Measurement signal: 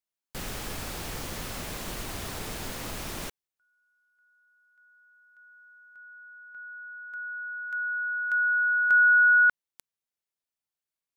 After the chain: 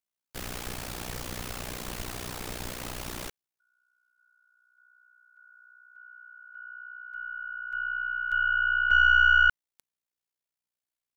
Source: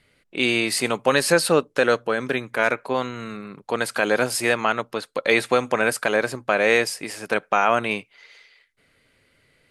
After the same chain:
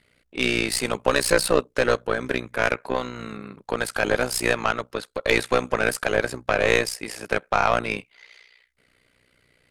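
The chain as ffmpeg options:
-af "aeval=exprs='0.668*(cos(1*acos(clip(val(0)/0.668,-1,1)))-cos(1*PI/2))+0.0422*(cos(5*acos(clip(val(0)/0.668,-1,1)))-cos(5*PI/2))+0.0668*(cos(6*acos(clip(val(0)/0.668,-1,1)))-cos(6*PI/2))+0.0119*(cos(7*acos(clip(val(0)/0.668,-1,1)))-cos(7*PI/2))':c=same,tremolo=f=61:d=0.857,volume=1dB"

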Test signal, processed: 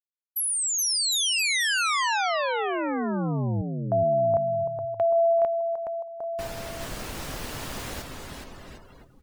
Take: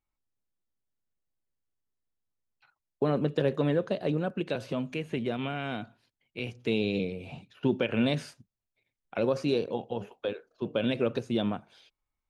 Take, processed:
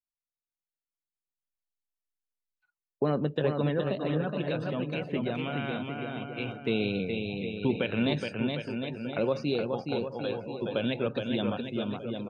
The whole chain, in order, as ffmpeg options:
-af "aecho=1:1:420|756|1025|1240|1412:0.631|0.398|0.251|0.158|0.1,adynamicequalizer=threshold=0.0178:dfrequency=390:dqfactor=0.92:tfrequency=390:tqfactor=0.92:attack=5:release=100:ratio=0.375:range=2.5:mode=cutabove:tftype=bell,afftdn=nr=21:nf=-48"

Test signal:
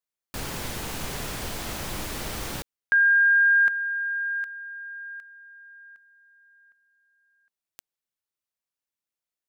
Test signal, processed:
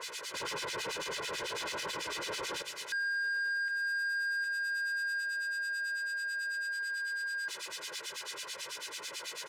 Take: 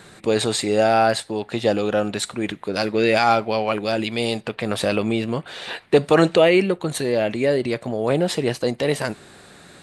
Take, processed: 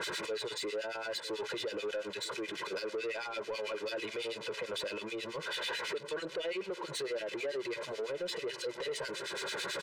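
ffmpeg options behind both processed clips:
-filter_complex "[0:a]aeval=exprs='val(0)+0.5*0.0531*sgn(val(0))':c=same,acompressor=threshold=-21dB:ratio=6:attack=4.2:release=669:knee=6:detection=rms,lowpass=5.8k,equalizer=f=680:w=1.9:g=-5,acrossover=split=1700[a][b];[a]aeval=exprs='val(0)*(1-1/2+1/2*cos(2*PI*9.1*n/s))':c=same[c];[b]aeval=exprs='val(0)*(1-1/2-1/2*cos(2*PI*9.1*n/s))':c=same[d];[c][d]amix=inputs=2:normalize=0,highpass=340,alimiter=level_in=5.5dB:limit=-24dB:level=0:latency=1:release=36,volume=-5.5dB,aecho=1:1:2:0.99,asplit=2[e][f];[f]adelay=951,lowpass=f=890:p=1,volume=-18dB,asplit=2[g][h];[h]adelay=951,lowpass=f=890:p=1,volume=0.45,asplit=2[i][j];[j]adelay=951,lowpass=f=890:p=1,volume=0.45,asplit=2[k][l];[l]adelay=951,lowpass=f=890:p=1,volume=0.45[m];[g][i][k][m]amix=inputs=4:normalize=0[n];[e][n]amix=inputs=2:normalize=0,asoftclip=type=tanh:threshold=-30.5dB"

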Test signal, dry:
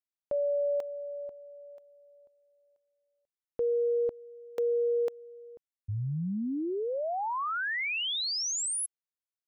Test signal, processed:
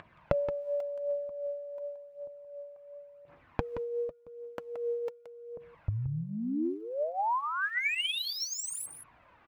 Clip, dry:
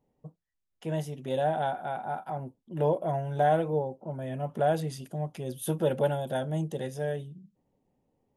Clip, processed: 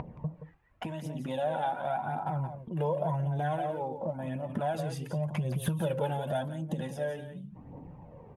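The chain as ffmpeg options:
-filter_complex "[0:a]acrossover=split=2000[a][b];[a]acompressor=mode=upward:threshold=-34dB:ratio=2.5:attack=83:release=23:knee=2.83:detection=peak[c];[b]asoftclip=type=hard:threshold=-35dB[d];[c][d]amix=inputs=2:normalize=0,lowshelf=f=240:g=4,asplit=2[e][f];[f]aecho=0:1:174:0.316[g];[e][g]amix=inputs=2:normalize=0,aphaser=in_gain=1:out_gain=1:delay=2.6:decay=0.47:speed=0.9:type=triangular,equalizer=f=160:t=o:w=0.33:g=4,equalizer=f=400:t=o:w=0.33:g=-9,equalizer=f=1k:t=o:w=0.33:g=5,equalizer=f=2.5k:t=o:w=0.33:g=4,acompressor=threshold=-27dB:ratio=6:attack=59:release=66:knee=1:detection=peak,flanger=delay=1.8:depth=1.8:regen=-56:speed=0.36:shape=sinusoidal,highpass=f=76:p=1"

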